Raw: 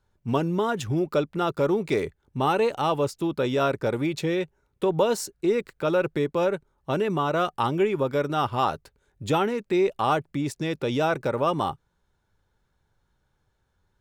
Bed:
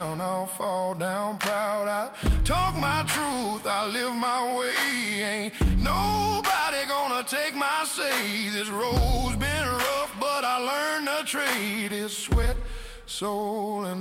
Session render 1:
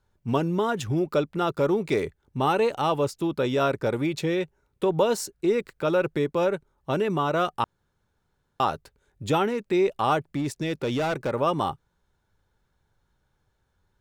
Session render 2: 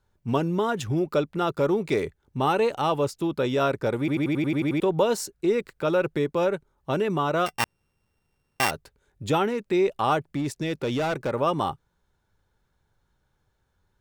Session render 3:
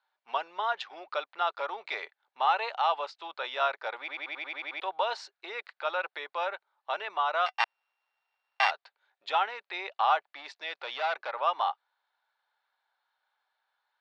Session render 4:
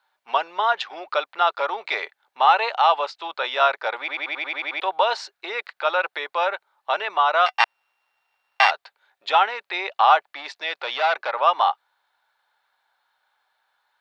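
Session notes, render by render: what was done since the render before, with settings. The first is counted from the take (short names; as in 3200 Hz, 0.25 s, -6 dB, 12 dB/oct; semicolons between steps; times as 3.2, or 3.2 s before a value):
7.64–8.6 room tone; 10.34–11.34 hard clip -22 dBFS
3.99 stutter in place 0.09 s, 9 plays; 7.46–8.71 sample sorter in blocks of 16 samples
elliptic band-pass 730–4300 Hz, stop band 70 dB
gain +9.5 dB; limiter -3 dBFS, peak gain reduction 1.5 dB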